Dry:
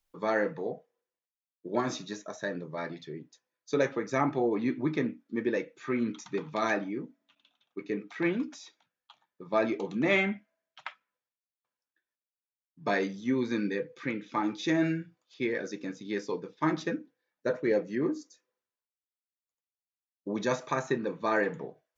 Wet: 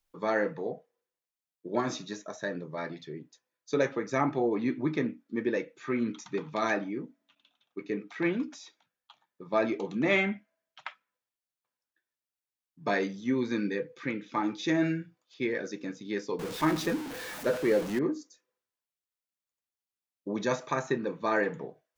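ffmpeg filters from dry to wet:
-filter_complex "[0:a]asettb=1/sr,asplit=3[a][b][c];[a]atrim=end=16.394[d];[b]atrim=start=16.39:end=17.99,asetpts=PTS-STARTPTS,afade=t=in:d=0.004:c=qsin,afade=t=out:st=1.596:d=0.004:c=qsin,aeval=exprs='val(0)+0.5*0.0224*sgn(val(0))':c=same[e];[c]atrim=start=17.986[f];[d][e]acrossfade=d=0.004:c1=hsin:c2=qsin[g];[g][f]acrossfade=d=0.004:c1=qsin:c2=hsin"

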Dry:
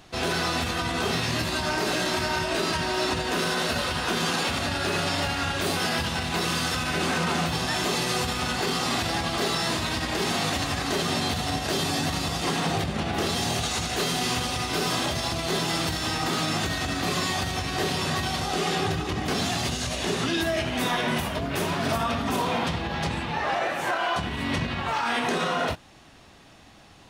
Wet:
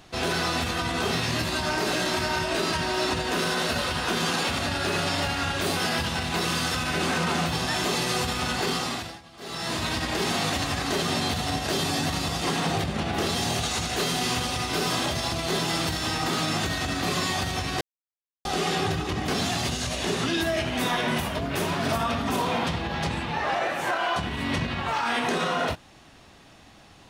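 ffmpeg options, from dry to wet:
-filter_complex "[0:a]asplit=5[a][b][c][d][e];[a]atrim=end=9.2,asetpts=PTS-STARTPTS,afade=t=out:st=8.72:d=0.48:silence=0.0841395[f];[b]atrim=start=9.2:end=9.37,asetpts=PTS-STARTPTS,volume=-21.5dB[g];[c]atrim=start=9.37:end=17.81,asetpts=PTS-STARTPTS,afade=t=in:d=0.48:silence=0.0841395,afade=t=out:st=8.436:d=0.004:c=hsin[h];[d]atrim=start=17.81:end=18.45,asetpts=PTS-STARTPTS,volume=0[i];[e]atrim=start=18.45,asetpts=PTS-STARTPTS,afade=t=in:d=0.004:c=hsin[j];[f][g][h][i][j]concat=n=5:v=0:a=1"

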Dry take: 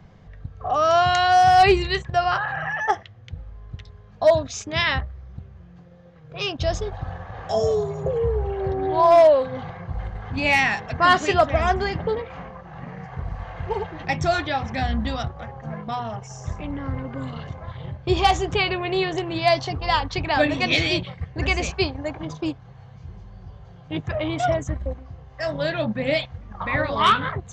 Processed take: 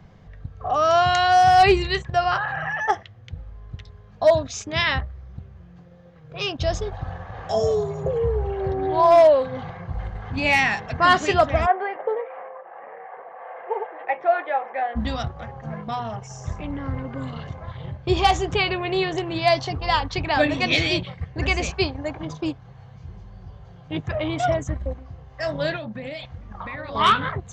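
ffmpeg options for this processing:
-filter_complex "[0:a]asplit=3[a][b][c];[a]afade=t=out:st=11.65:d=0.02[d];[b]highpass=f=450:w=0.5412,highpass=f=450:w=1.3066,equalizer=f=510:t=q:w=4:g=6,equalizer=f=740:t=q:w=4:g=3,equalizer=f=1.4k:t=q:w=4:g=-3,lowpass=f=2.1k:w=0.5412,lowpass=f=2.1k:w=1.3066,afade=t=in:st=11.65:d=0.02,afade=t=out:st=14.95:d=0.02[e];[c]afade=t=in:st=14.95:d=0.02[f];[d][e][f]amix=inputs=3:normalize=0,asettb=1/sr,asplit=3[g][h][i];[g]atrim=end=25.764[j];[h]atrim=start=25.76:end=26.95,asetpts=PTS-STARTPTS,afade=t=in:d=0.004:c=qsin,afade=t=out:st=1.186:d=0.004:c=qsin,acompressor=threshold=-29dB:ratio=12:attack=3.2:release=140:knee=1:detection=peak[k];[i]atrim=start=26.946[l];[j][k]acrossfade=d=0.004:c1=hsin:c2=qsin[m];[m][l]acrossfade=d=0.004:c1=qsin:c2=hsin"

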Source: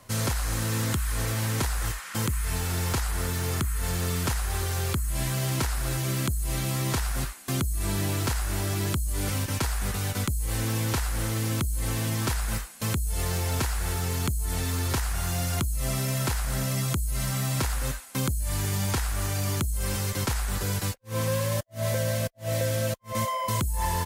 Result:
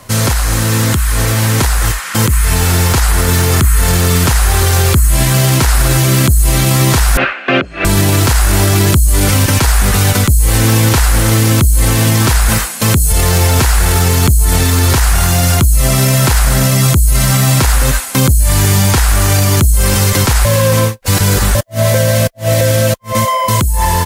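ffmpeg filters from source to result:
-filter_complex "[0:a]asettb=1/sr,asplit=3[a][b][c];[a]atrim=end=7.174[d];[b]atrim=start=7.17:end=7.85,asetpts=PTS-STARTPTS,afade=t=in:d=0.004:c=qsin,afade=t=out:st=0.676:d=0.004:c=qsin,highpass=330,equalizer=f=550:t=q:w=4:g=7,equalizer=f=960:t=q:w=4:g=-6,equalizer=f=1.5k:t=q:w=4:g=7,equalizer=f=2.6k:t=q:w=4:g=9,lowpass=f=2.8k:w=0.5412,lowpass=f=2.8k:w=1.3066[e];[c]atrim=start=7.846[f];[d][e]acrossfade=d=0.004:c1=hsin:c2=qsin[g];[g][f]acrossfade=d=0.004:c1=qsin:c2=hsin,asettb=1/sr,asplit=3[h][i][j];[h]atrim=end=12.494[k];[i]atrim=start=12.49:end=13.12,asetpts=PTS-STARTPTS,afade=t=in:d=0.004:c=qsin,afade=t=out:st=0.626:d=0.004:c=qsin,highpass=77[l];[j]atrim=start=13.116[m];[k][l]acrossfade=d=0.004:c1=hsin:c2=qsin[n];[n][m]acrossfade=d=0.004:c1=qsin:c2=hsin,asplit=3[o][p][q];[o]atrim=end=20.452[r];[p]atrim=start=20.448:end=21.552,asetpts=PTS-STARTPTS,areverse[s];[q]atrim=start=21.548[t];[r][s]acrossfade=d=0.004:c1=hsin:c2=hsin[u];[u][t]acrossfade=d=0.004:c1=hsin:c2=hsin,dynaudnorm=f=510:g=13:m=9dB,alimiter=level_in=16dB:limit=-1dB:release=50:level=0:latency=1,volume=-1dB"

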